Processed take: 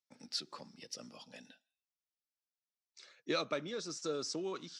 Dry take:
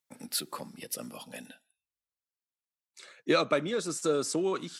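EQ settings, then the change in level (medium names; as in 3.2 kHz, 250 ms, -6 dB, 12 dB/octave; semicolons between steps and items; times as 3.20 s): four-pole ladder low-pass 6.2 kHz, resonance 55%; 0.0 dB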